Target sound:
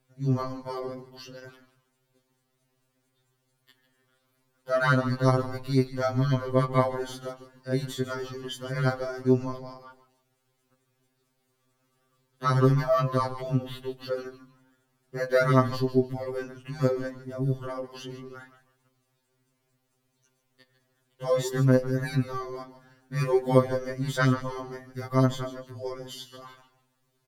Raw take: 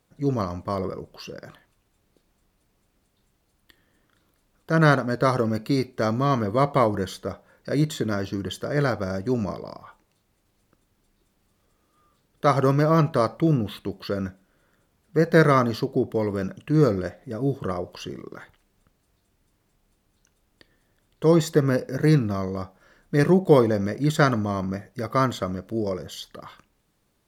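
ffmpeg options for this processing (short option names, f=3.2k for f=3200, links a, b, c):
-filter_complex "[0:a]asplit=4[a][b][c][d];[b]adelay=149,afreqshift=-120,volume=-13dB[e];[c]adelay=298,afreqshift=-240,volume=-23.5dB[f];[d]adelay=447,afreqshift=-360,volume=-33.9dB[g];[a][e][f][g]amix=inputs=4:normalize=0,afftfilt=real='re*2.45*eq(mod(b,6),0)':imag='im*2.45*eq(mod(b,6),0)':win_size=2048:overlap=0.75,volume=-1.5dB"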